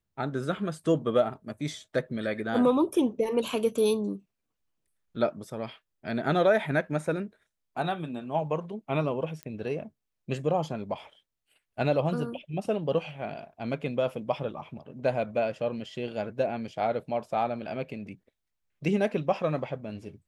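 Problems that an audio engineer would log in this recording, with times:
0:09.43: click −24 dBFS

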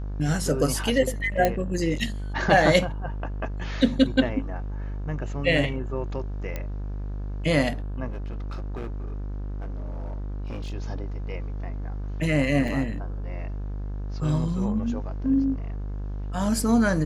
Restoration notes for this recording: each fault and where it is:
mains buzz 50 Hz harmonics 35 −31 dBFS
0:01.45: click −8 dBFS
0:06.56: click −17 dBFS
0:08.09–0:10.74: clipping −29 dBFS
0:12.68: drop-out 4 ms

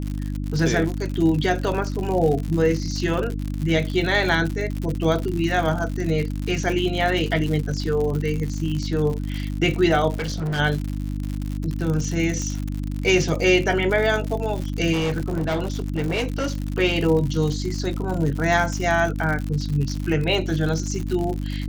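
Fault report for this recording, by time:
surface crackle 100 per second −26 dBFS
mains hum 50 Hz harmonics 6 −27 dBFS
0:10.16–0:10.60: clipping −22.5 dBFS
0:12.42: click −17 dBFS
0:14.92–0:16.56: clipping −19.5 dBFS

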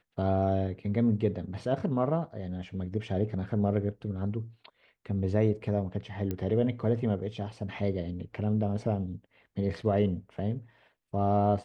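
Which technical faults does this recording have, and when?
0:06.31: click −20 dBFS

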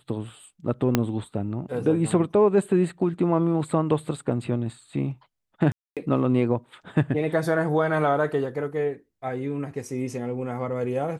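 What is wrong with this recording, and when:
0:00.95: click −5 dBFS
0:05.72–0:05.97: drop-out 247 ms

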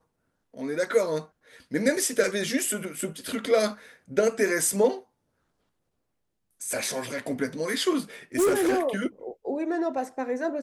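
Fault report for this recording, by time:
0:08.35–0:08.81: clipping −18.5 dBFS

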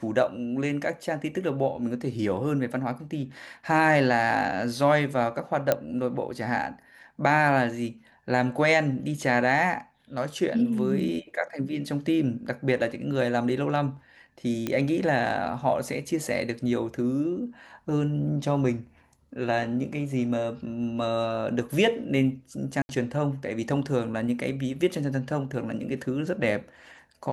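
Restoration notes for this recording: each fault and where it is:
0:05.72: click −8 dBFS
0:14.67: click −14 dBFS
0:22.82–0:22.89: drop-out 71 ms

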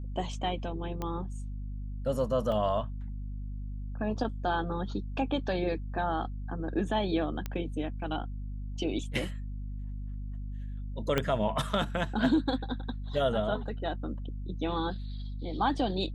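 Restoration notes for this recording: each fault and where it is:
mains hum 50 Hz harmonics 5 −37 dBFS
0:01.02: click −21 dBFS
0:02.52: drop-out 2.1 ms
0:07.46: click −20 dBFS
0:11.18: click −13 dBFS

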